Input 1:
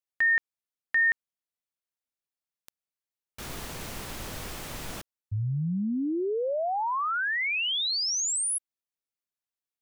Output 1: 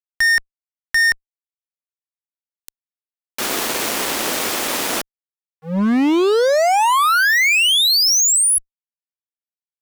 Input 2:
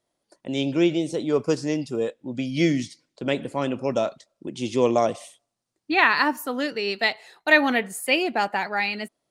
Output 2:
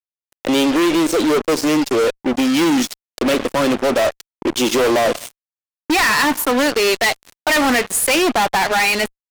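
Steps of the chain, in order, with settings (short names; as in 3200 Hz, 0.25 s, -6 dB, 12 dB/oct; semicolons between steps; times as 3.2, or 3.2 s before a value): HPF 250 Hz 24 dB/oct; in parallel at +2 dB: compressor 10:1, threshold -32 dBFS; on the sum: fuzz box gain 32 dB, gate -35 dBFS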